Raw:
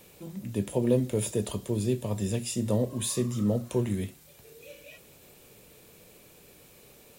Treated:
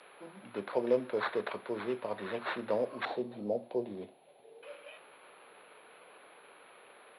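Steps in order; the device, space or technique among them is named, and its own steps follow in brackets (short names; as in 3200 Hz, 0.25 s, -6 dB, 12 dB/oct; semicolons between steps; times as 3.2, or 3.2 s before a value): toy sound module (decimation joined by straight lines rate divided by 8×; pulse-width modulation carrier 11000 Hz; speaker cabinet 590–4600 Hz, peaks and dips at 1900 Hz -5 dB, 3000 Hz -4 dB, 4300 Hz +7 dB); 3.05–4.63 EQ curve 760 Hz 0 dB, 1200 Hz -21 dB, 3700 Hz -7 dB; gain +3.5 dB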